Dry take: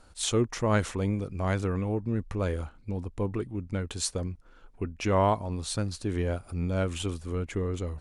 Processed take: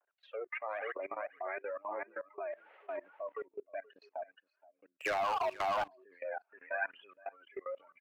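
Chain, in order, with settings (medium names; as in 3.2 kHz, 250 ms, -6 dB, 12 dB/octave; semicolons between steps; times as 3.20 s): phaser 1 Hz, delay 4 ms, feedback 67%; vibrato 0.62 Hz 45 cents; spectral noise reduction 20 dB; 2.51–2.96 s: added noise pink -52 dBFS; mistuned SSB +100 Hz 420–2500 Hz; delay 476 ms -12.5 dB; rotary cabinet horn 0.85 Hz; level held to a coarse grid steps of 22 dB; 4.92–5.88 s: waveshaping leveller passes 3; 6.49–7.27 s: peaking EQ 1.6 kHz +10 dB 0.93 oct; trim +5.5 dB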